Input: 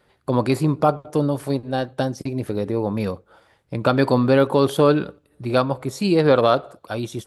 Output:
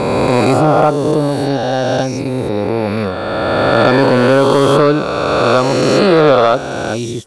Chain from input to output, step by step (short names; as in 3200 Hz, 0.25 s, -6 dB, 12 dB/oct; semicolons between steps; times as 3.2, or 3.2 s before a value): spectral swells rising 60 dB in 3.00 s; LPF 9300 Hz 24 dB/oct; soft clip -5 dBFS, distortion -19 dB; gain +4.5 dB